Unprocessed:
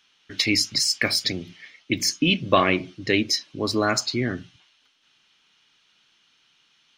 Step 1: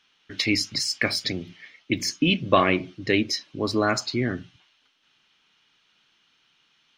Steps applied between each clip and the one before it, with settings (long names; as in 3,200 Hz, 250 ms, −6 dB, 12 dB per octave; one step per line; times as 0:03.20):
high-shelf EQ 5,100 Hz −8.5 dB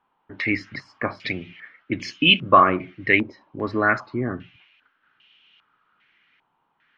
low-pass on a step sequencer 2.5 Hz 920–2,900 Hz
level −1 dB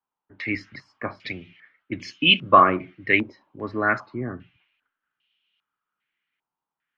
multiband upward and downward expander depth 40%
level −3.5 dB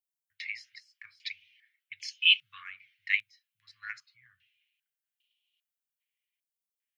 inverse Chebyshev band-stop filter 300–700 Hz, stop band 70 dB
first difference
transient designer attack +6 dB, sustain +1 dB